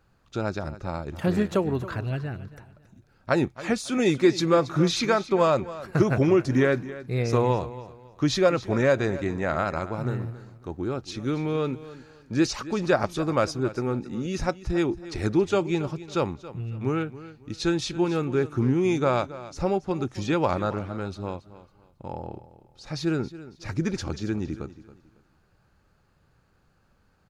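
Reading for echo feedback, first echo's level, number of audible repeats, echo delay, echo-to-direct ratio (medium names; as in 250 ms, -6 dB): 28%, -16.0 dB, 2, 275 ms, -15.5 dB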